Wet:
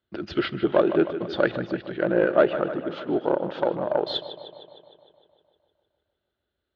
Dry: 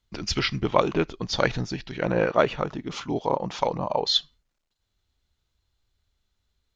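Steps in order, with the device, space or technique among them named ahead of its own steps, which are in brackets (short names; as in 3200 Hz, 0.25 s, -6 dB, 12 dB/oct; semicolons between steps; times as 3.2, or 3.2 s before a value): analogue delay pedal into a guitar amplifier (analogue delay 0.153 s, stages 4096, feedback 66%, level -13 dB; tube stage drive 12 dB, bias 0.45; speaker cabinet 110–3500 Hz, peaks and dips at 130 Hz -5 dB, 350 Hz +10 dB, 600 Hz +7 dB, 1000 Hz -6 dB, 1500 Hz +6 dB, 2300 Hz -8 dB); bell 5600 Hz -5 dB 0.33 oct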